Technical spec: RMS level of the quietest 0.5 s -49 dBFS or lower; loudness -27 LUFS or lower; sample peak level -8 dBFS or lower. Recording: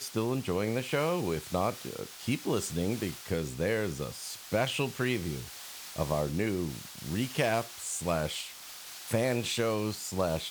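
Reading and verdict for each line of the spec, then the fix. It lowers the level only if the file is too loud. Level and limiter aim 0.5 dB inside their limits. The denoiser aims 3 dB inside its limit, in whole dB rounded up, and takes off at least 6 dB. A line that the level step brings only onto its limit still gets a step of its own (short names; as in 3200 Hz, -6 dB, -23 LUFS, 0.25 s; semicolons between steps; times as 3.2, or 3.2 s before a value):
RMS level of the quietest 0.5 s -46 dBFS: fail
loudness -32.0 LUFS: OK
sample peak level -15.0 dBFS: OK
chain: denoiser 6 dB, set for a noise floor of -46 dBFS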